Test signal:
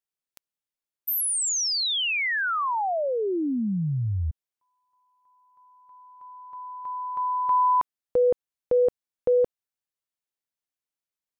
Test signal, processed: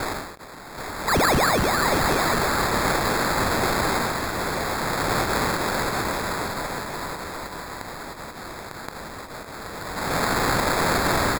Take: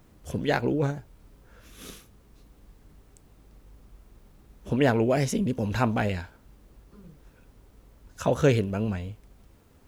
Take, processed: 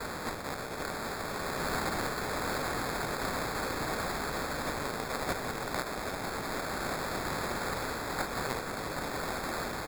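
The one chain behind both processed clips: per-bin compression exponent 0.2; HPF 76 Hz; notch 690 Hz, Q 12; gate with hold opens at -16 dBFS; AGC gain up to 5.5 dB; limiter -9.5 dBFS; differentiator; sample-and-hold 15×; echo 0.777 s -7 dB

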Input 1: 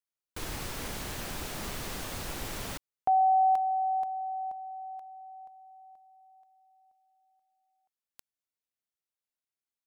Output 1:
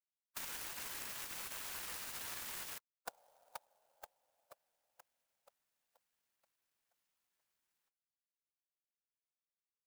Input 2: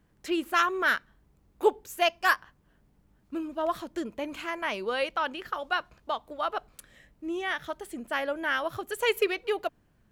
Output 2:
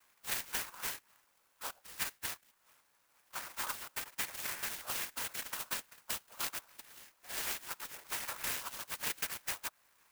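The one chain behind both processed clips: spectral gate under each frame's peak -15 dB weak; HPF 1100 Hz 12 dB/oct; tilt +4 dB/oct; compressor 12:1, threshold -39 dBFS; noise vocoder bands 8; air absorption 110 m; clock jitter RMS 0.083 ms; gain +8.5 dB

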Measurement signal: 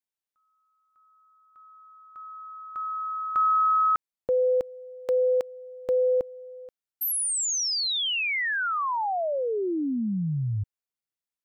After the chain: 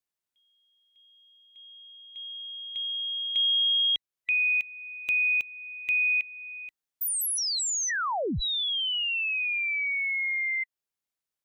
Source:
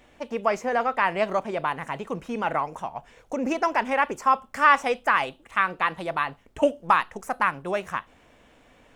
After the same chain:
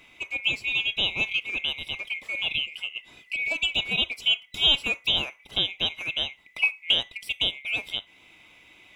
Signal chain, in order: band-swap scrambler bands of 2000 Hz; in parallel at +0.5 dB: compressor, threshold -37 dBFS; on the sum: gain -4 dB

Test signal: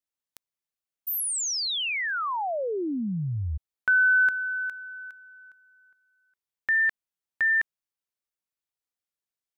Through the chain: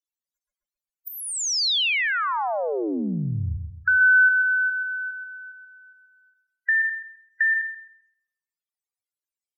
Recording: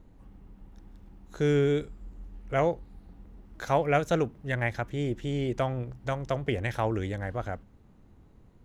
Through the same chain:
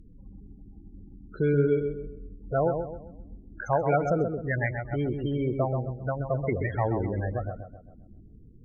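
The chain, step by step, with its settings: loudest bins only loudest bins 16; in parallel at +1 dB: compressor, threshold -34 dBFS; on the sum: treble ducked by the level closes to 2400 Hz, closed at -19 dBFS; high shelf 2500 Hz +9 dB; on a send: darkening echo 0.131 s, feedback 39%, low-pass 1600 Hz, level -5.5 dB; on the sum: ending taper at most 130 dB/s; gain -2 dB

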